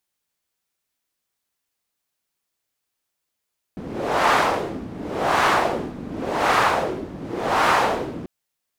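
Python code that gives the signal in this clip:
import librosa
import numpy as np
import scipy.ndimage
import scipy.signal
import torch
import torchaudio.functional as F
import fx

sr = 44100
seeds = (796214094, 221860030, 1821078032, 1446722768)

y = fx.wind(sr, seeds[0], length_s=4.49, low_hz=230.0, high_hz=1100.0, q=1.5, gusts=4, swing_db=16)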